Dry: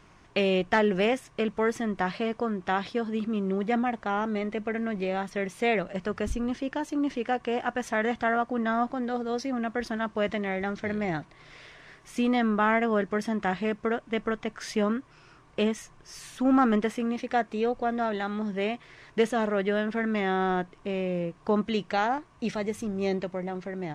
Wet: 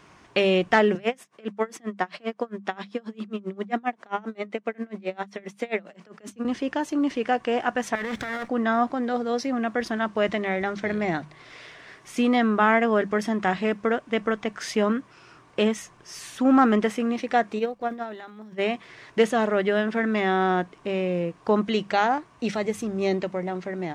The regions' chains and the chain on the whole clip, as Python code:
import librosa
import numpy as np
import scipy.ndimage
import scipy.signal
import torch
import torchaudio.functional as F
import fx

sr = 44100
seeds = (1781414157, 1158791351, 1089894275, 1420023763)

y = fx.chain(x, sr, fx.highpass(hz=190.0, slope=24),
    fx.tremolo_db(hz=7.5, depth_db=30), at=(0.95, 6.45))
y = fx.chain(y, sr, fx.lower_of_two(delay_ms=0.53),
    fx.over_compress(threshold_db=-34.0, ratio=-1.0), at=(7.95, 8.48))
y = fx.transient(y, sr, attack_db=5, sustain_db=10, at=(17.58, 18.58), fade=0.02)
y = fx.dmg_crackle(y, sr, seeds[0], per_s=350.0, level_db=-50.0, at=(17.58, 18.58), fade=0.02)
y = fx.upward_expand(y, sr, threshold_db=-35.0, expansion=2.5, at=(17.58, 18.58), fade=0.02)
y = fx.highpass(y, sr, hz=120.0, slope=6)
y = fx.hum_notches(y, sr, base_hz=50, count=4)
y = y * 10.0 ** (4.5 / 20.0)